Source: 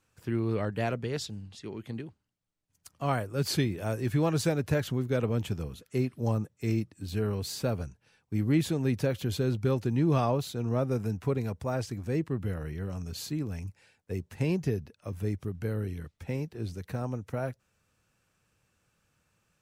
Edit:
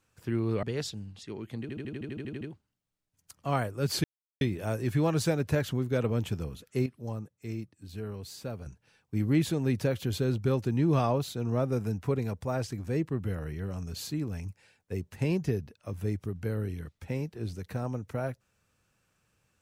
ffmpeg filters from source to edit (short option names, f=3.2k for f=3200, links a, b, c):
-filter_complex "[0:a]asplit=15[a][b][c][d][e][f][g][h][i][j][k][l][m][n][o];[a]atrim=end=0.632[p];[b]atrim=start=0.988:end=2.052[q];[c]atrim=start=1.968:end=2.052[r];[d]atrim=start=1.968:end=2.052[s];[e]atrim=start=1.968:end=2.052[t];[f]atrim=start=1.968:end=2.052[u];[g]atrim=start=1.968:end=2.052[v];[h]atrim=start=1.968:end=2.052[w];[i]atrim=start=1.968:end=2.052[x];[j]atrim=start=1.968:end=2.052[y];[k]atrim=start=1.968:end=2.052[z];[l]atrim=start=1.968:end=3.6,asetpts=PTS-STARTPTS,afade=t=out:st=1.628:d=0.004:c=hsin,apad=pad_dur=0.37[aa];[m]atrim=start=3.6:end=6.052,asetpts=PTS-STARTPTS,afade=t=in:d=0.004:c=hsin[ab];[n]atrim=start=6.048:end=7.852,asetpts=PTS-STARTPTS,volume=-8dB[ac];[o]atrim=start=7.848[ad];[p][q]acrossfade=d=0.004:c1=hsin:c2=hsin[ae];[ae][r]acrossfade=d=0.004:c1=hsin:c2=hsin[af];[af][s]acrossfade=d=0.004:c1=hsin:c2=hsin[ag];[ag][t]acrossfade=d=0.004:c1=hsin:c2=hsin[ah];[ah][u]acrossfade=d=0.004:c1=hsin:c2=hsin[ai];[ai][v]acrossfade=d=0.004:c1=hsin:c2=hsin[aj];[aj][w]acrossfade=d=0.004:c1=hsin:c2=hsin[ak];[ak][x]acrossfade=d=0.004:c1=hsin:c2=hsin[al];[al][y]acrossfade=d=0.004:c1=hsin:c2=hsin[am];[am][z]acrossfade=d=0.004:c1=hsin:c2=hsin[an];[aa][ab]concat=n=2:v=0:a=1[ao];[an][ao]acrossfade=d=0.004:c1=hsin:c2=hsin[ap];[ap][ac]acrossfade=d=0.004:c1=hsin:c2=hsin[aq];[aq][ad]acrossfade=d=0.004:c1=hsin:c2=hsin"